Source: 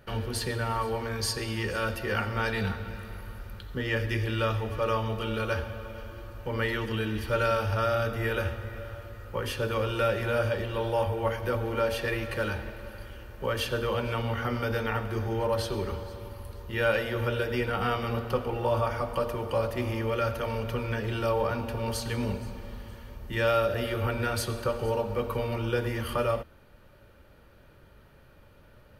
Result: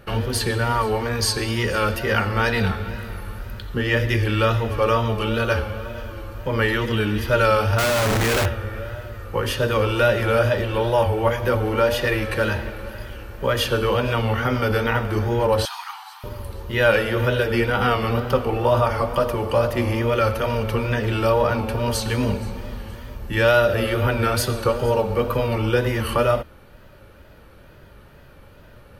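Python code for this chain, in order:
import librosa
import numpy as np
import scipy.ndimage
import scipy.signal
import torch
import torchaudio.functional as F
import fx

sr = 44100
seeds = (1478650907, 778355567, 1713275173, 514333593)

y = fx.schmitt(x, sr, flips_db=-42.0, at=(7.78, 8.46))
y = fx.wow_flutter(y, sr, seeds[0], rate_hz=2.1, depth_cents=80.0)
y = fx.brickwall_highpass(y, sr, low_hz=710.0, at=(15.65, 16.24))
y = y * 10.0 ** (8.5 / 20.0)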